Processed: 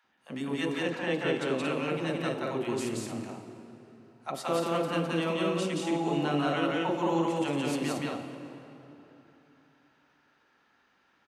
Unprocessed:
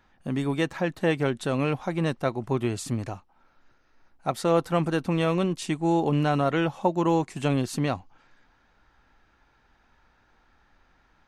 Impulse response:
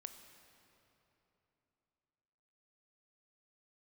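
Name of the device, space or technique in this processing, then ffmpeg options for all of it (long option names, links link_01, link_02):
stadium PA: -filter_complex "[0:a]highpass=210,equalizer=frequency=2900:width_type=o:width=0.2:gain=4.5,aecho=1:1:174.9|227.4:0.891|0.501[link_01];[1:a]atrim=start_sample=2205[link_02];[link_01][link_02]afir=irnorm=-1:irlink=0,asettb=1/sr,asplit=3[link_03][link_04][link_05];[link_03]atrim=end=0.894[link_06];[link_04]atrim=start=0.89:end=1.66,asetpts=PTS-STARTPTS,afade=type=in:duration=0.004:curve=qsin,afade=type=out:start_time=0.766:duration=0.004:curve=qsin,lowpass=9000[link_07];[link_05]atrim=start=1.656[link_08];[link_06][link_07]acrossfade=duration=0.004:curve1=hsin:curve2=qsin[link_09];[link_09][link_08]acrossfade=duration=0.004:curve1=qsin:curve2=hsin,acrossover=split=710[link_10][link_11];[link_10]adelay=40[link_12];[link_12][link_11]amix=inputs=2:normalize=0"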